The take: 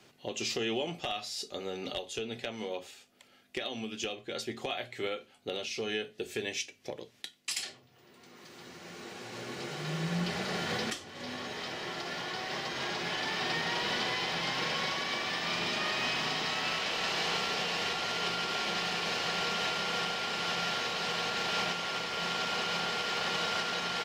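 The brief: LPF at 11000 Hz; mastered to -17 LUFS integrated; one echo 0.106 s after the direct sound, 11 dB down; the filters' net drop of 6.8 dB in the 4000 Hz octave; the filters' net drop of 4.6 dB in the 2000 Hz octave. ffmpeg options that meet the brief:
-af "lowpass=11k,equalizer=f=2k:t=o:g=-3.5,equalizer=f=4k:t=o:g=-8,aecho=1:1:106:0.282,volume=19.5dB"

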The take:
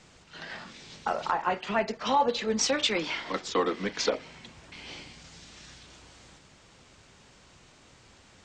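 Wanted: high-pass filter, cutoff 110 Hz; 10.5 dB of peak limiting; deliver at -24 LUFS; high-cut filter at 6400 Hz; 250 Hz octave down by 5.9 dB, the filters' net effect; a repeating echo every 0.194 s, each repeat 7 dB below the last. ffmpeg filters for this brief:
-af "highpass=110,lowpass=6.4k,equalizer=f=250:t=o:g=-7.5,alimiter=limit=-24dB:level=0:latency=1,aecho=1:1:194|388|582|776|970:0.447|0.201|0.0905|0.0407|0.0183,volume=10.5dB"

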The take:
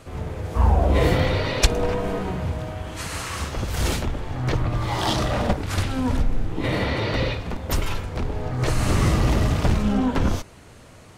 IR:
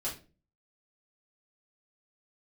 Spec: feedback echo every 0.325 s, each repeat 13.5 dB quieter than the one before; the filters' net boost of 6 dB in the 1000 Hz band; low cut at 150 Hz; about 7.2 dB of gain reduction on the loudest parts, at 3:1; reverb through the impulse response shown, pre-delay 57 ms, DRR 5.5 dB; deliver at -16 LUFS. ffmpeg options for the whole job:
-filter_complex "[0:a]highpass=150,equalizer=f=1k:t=o:g=7.5,acompressor=threshold=-25dB:ratio=3,aecho=1:1:325|650:0.211|0.0444,asplit=2[a][b];[1:a]atrim=start_sample=2205,adelay=57[c];[b][c]afir=irnorm=-1:irlink=0,volume=-8dB[d];[a][d]amix=inputs=2:normalize=0,volume=11.5dB"

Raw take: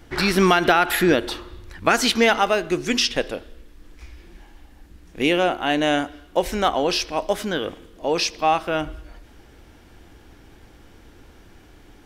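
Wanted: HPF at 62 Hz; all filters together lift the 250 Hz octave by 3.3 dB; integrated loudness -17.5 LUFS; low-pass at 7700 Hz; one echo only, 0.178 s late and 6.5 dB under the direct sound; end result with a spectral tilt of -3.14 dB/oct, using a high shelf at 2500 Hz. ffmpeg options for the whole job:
-af "highpass=62,lowpass=7.7k,equalizer=f=250:t=o:g=4.5,highshelf=f=2.5k:g=8,aecho=1:1:178:0.473"

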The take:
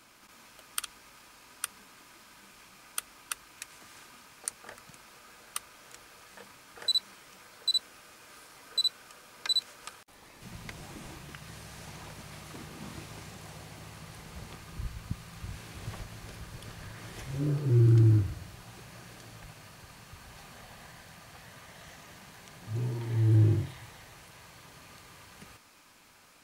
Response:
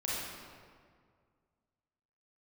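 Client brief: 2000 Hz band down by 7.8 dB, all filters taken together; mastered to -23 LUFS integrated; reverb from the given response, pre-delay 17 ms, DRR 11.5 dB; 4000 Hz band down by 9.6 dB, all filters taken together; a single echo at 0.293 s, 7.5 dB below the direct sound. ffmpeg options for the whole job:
-filter_complex "[0:a]equalizer=f=2k:t=o:g=-8.5,equalizer=f=4k:t=o:g=-8,aecho=1:1:293:0.422,asplit=2[a][b];[1:a]atrim=start_sample=2205,adelay=17[c];[b][c]afir=irnorm=-1:irlink=0,volume=-16.5dB[d];[a][d]amix=inputs=2:normalize=0,volume=7.5dB"

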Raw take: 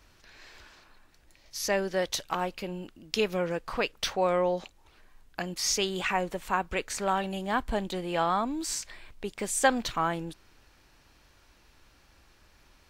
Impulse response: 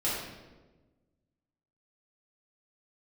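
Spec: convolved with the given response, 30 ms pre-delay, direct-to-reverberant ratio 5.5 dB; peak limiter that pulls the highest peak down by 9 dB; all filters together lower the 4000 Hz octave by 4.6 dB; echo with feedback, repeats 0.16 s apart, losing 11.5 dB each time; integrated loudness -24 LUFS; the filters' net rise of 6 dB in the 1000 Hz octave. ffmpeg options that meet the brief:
-filter_complex "[0:a]equalizer=f=1k:t=o:g=8,equalizer=f=4k:t=o:g=-7,alimiter=limit=-16.5dB:level=0:latency=1,aecho=1:1:160|320|480:0.266|0.0718|0.0194,asplit=2[a][b];[1:a]atrim=start_sample=2205,adelay=30[c];[b][c]afir=irnorm=-1:irlink=0,volume=-14dB[d];[a][d]amix=inputs=2:normalize=0,volume=4.5dB"

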